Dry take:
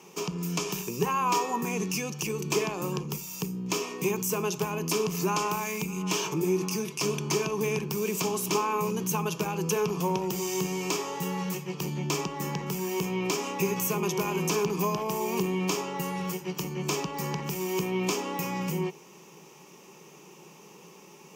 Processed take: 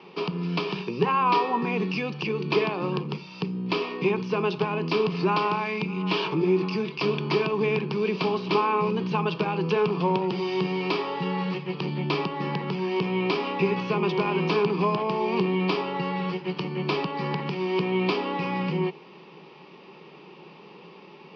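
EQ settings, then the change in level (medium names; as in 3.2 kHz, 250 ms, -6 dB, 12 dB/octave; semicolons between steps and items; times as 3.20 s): high-pass 130 Hz; steep low-pass 4.7 kHz 72 dB/octave; +4.5 dB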